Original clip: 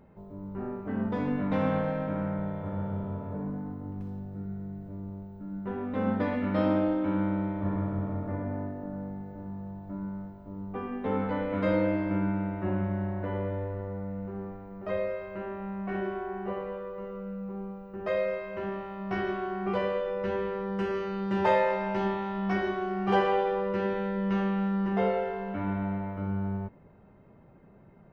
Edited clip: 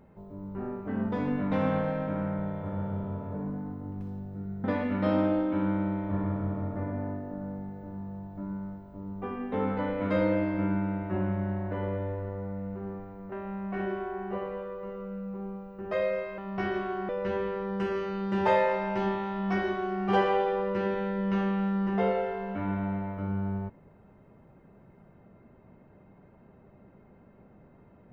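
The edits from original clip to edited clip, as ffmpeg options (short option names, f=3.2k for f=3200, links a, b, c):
-filter_complex "[0:a]asplit=5[a][b][c][d][e];[a]atrim=end=4.642[f];[b]atrim=start=6.158:end=14.842[g];[c]atrim=start=15.468:end=18.532[h];[d]atrim=start=18.908:end=19.622[i];[e]atrim=start=20.078[j];[f][g]acrossfade=d=0.004:c1=hsin:c2=hsin[k];[k][h]acrossfade=d=0.004:c1=hsin:c2=hsin[l];[l][i]acrossfade=d=0.004:c1=hsin:c2=hsin[m];[m][j]acrossfade=d=0.004:c1=hsin:c2=hsin"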